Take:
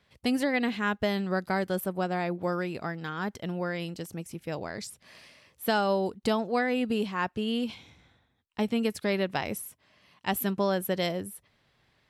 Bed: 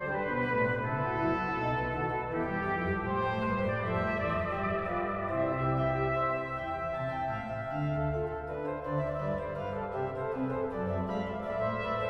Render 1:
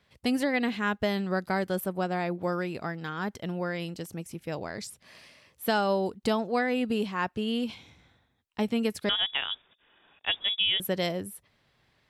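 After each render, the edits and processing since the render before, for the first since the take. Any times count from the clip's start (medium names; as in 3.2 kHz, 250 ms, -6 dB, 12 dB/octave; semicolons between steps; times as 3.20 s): 9.09–10.80 s: frequency inversion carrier 3.6 kHz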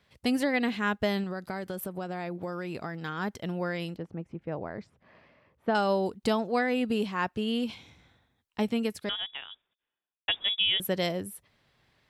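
1.23–3.05 s: compression, threshold -30 dBFS; 3.96–5.75 s: low-pass 1.4 kHz; 8.67–10.28 s: fade out quadratic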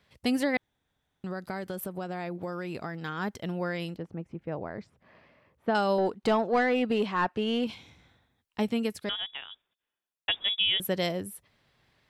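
0.57–1.24 s: room tone; 5.98–7.67 s: overdrive pedal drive 15 dB, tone 1.4 kHz, clips at -14 dBFS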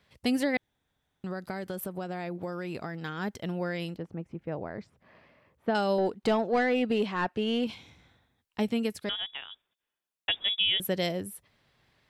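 dynamic bell 1.1 kHz, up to -5 dB, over -42 dBFS, Q 1.9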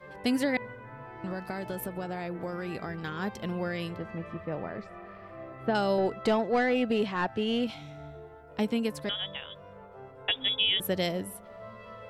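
add bed -13.5 dB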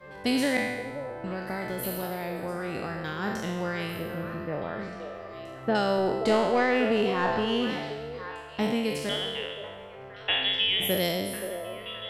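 spectral sustain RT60 1.17 s; on a send: repeats whose band climbs or falls 525 ms, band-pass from 530 Hz, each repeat 1.4 oct, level -6 dB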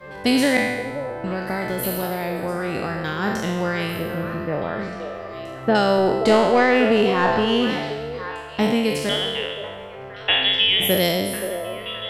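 trim +7.5 dB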